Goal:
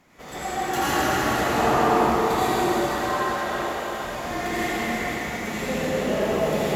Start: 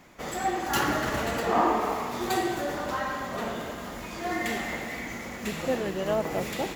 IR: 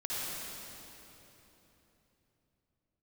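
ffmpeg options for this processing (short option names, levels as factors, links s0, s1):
-filter_complex "[0:a]asettb=1/sr,asplit=3[s0][s1][s2];[s0]atrim=end=2.574[s3];[s1]atrim=start=2.57:end=3.89,asetpts=PTS-STARTPTS,afade=t=in:d=0.004:c=qsin,afade=t=out:st=1.316:d=0.004:c=qsin,highpass=f=490:w=0.5412,highpass=f=490:w=1.3066[s4];[s2]atrim=start=3.886[s5];[s3][s4]acrossfade=d=0.004:c1=hsin:c2=qsin[s6];[s6][s5]acrossfade=d=0.004:c1=qsin:c2=hsin[s7];[1:a]atrim=start_sample=2205,asetrate=30870,aresample=44100[s8];[s7][s8]afir=irnorm=-1:irlink=0,volume=0.75"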